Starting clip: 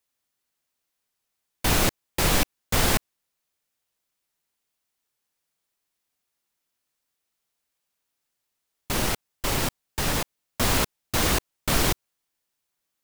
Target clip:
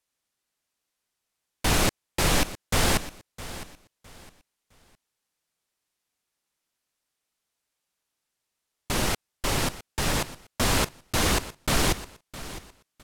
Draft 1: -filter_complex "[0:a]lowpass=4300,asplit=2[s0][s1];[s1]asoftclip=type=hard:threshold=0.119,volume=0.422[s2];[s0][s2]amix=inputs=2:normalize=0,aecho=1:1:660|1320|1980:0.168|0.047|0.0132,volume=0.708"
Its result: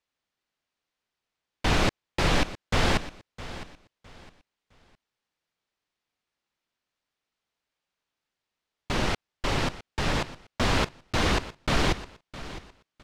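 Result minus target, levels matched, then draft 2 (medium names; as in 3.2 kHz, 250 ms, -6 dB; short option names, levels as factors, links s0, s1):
8 kHz band -8.5 dB
-filter_complex "[0:a]lowpass=12000,asplit=2[s0][s1];[s1]asoftclip=type=hard:threshold=0.119,volume=0.422[s2];[s0][s2]amix=inputs=2:normalize=0,aecho=1:1:660|1320|1980:0.168|0.047|0.0132,volume=0.708"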